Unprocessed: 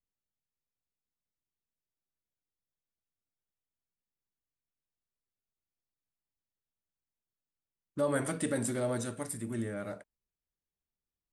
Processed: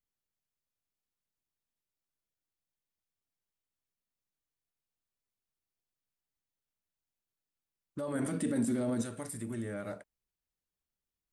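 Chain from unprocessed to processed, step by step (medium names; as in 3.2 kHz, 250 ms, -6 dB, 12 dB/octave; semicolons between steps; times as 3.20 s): peak limiter -29.5 dBFS, peak gain reduction 9.5 dB; 8.13–9.02 s: peaking EQ 240 Hz +11 dB 1 oct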